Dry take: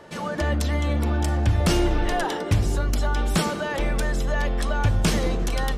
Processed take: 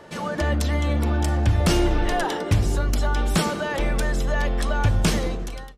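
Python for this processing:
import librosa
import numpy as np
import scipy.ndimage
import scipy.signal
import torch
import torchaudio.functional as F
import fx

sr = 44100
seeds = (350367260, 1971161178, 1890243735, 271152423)

y = fx.fade_out_tail(x, sr, length_s=0.72)
y = y * librosa.db_to_amplitude(1.0)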